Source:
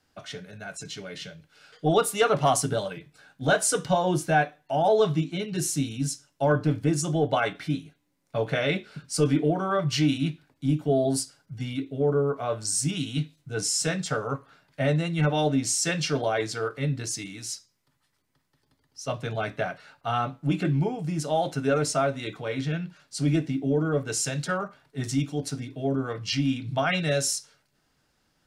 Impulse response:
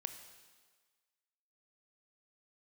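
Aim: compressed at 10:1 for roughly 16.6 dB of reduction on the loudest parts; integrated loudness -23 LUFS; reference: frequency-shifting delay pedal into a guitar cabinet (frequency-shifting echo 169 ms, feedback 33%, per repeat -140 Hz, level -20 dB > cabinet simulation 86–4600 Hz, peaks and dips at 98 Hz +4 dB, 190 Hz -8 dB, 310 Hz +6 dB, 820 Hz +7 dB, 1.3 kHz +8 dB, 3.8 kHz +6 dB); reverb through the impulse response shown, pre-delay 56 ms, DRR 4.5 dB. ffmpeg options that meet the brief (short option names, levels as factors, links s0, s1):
-filter_complex "[0:a]acompressor=threshold=0.02:ratio=10,asplit=2[s0][s1];[1:a]atrim=start_sample=2205,adelay=56[s2];[s1][s2]afir=irnorm=-1:irlink=0,volume=0.75[s3];[s0][s3]amix=inputs=2:normalize=0,asplit=4[s4][s5][s6][s7];[s5]adelay=169,afreqshift=-140,volume=0.1[s8];[s6]adelay=338,afreqshift=-280,volume=0.0331[s9];[s7]adelay=507,afreqshift=-420,volume=0.0108[s10];[s4][s8][s9][s10]amix=inputs=4:normalize=0,highpass=86,equalizer=f=98:t=q:w=4:g=4,equalizer=f=190:t=q:w=4:g=-8,equalizer=f=310:t=q:w=4:g=6,equalizer=f=820:t=q:w=4:g=7,equalizer=f=1300:t=q:w=4:g=8,equalizer=f=3800:t=q:w=4:g=6,lowpass=f=4600:w=0.5412,lowpass=f=4600:w=1.3066,volume=4.47"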